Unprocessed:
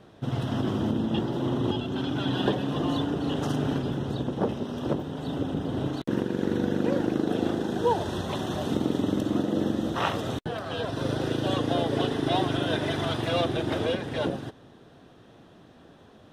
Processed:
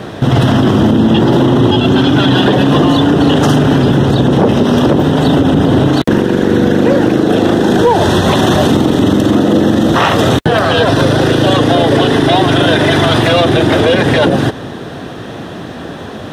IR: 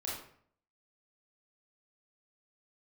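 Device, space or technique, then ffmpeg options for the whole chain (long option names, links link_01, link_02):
mastering chain: -af "highpass=57,equalizer=frequency=1800:width_type=o:width=0.45:gain=3,acompressor=threshold=-30dB:ratio=2,asoftclip=type=tanh:threshold=-19dB,asoftclip=type=hard:threshold=-22.5dB,alimiter=level_in=28dB:limit=-1dB:release=50:level=0:latency=1,volume=-1dB"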